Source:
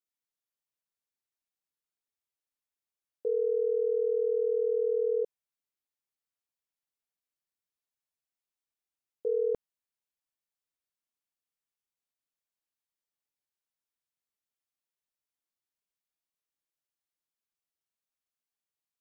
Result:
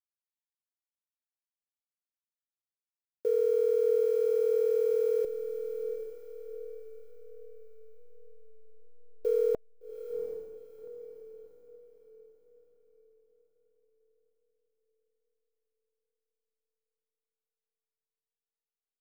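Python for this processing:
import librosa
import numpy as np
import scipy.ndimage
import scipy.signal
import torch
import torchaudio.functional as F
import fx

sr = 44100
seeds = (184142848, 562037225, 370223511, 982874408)

y = fx.delta_hold(x, sr, step_db=-48.5)
y = fx.notch(y, sr, hz=650.0, q=12.0)
y = fx.echo_diffused(y, sr, ms=763, feedback_pct=41, wet_db=-9)
y = F.gain(torch.from_numpy(y), 2.0).numpy()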